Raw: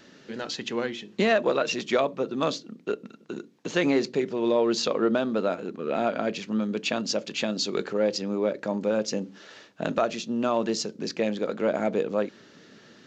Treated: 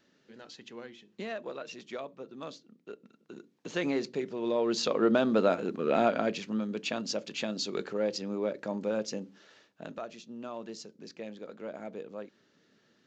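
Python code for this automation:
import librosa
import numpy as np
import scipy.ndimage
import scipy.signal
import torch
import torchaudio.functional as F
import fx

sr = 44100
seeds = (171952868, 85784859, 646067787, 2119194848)

y = fx.gain(x, sr, db=fx.line((2.89, -16.0), (3.76, -7.5), (4.43, -7.5), (5.32, 1.0), (5.98, 1.0), (6.65, -6.0), (8.99, -6.0), (9.98, -15.5)))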